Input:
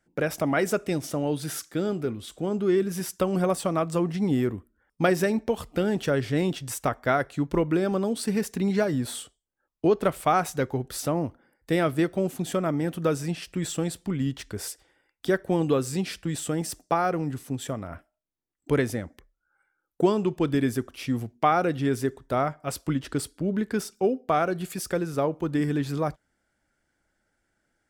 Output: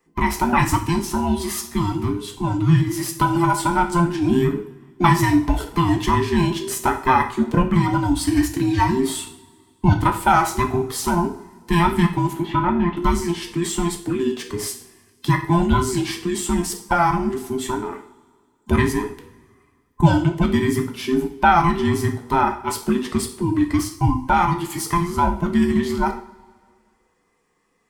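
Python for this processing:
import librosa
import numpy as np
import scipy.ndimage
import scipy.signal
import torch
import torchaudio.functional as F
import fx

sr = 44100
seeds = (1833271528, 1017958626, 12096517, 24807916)

y = fx.band_invert(x, sr, width_hz=500)
y = fx.lowpass(y, sr, hz=3400.0, slope=24, at=(12.33, 12.97))
y = fx.rev_double_slope(y, sr, seeds[0], early_s=0.47, late_s=2.0, knee_db=-21, drr_db=3.5)
y = F.gain(torch.from_numpy(y), 5.5).numpy()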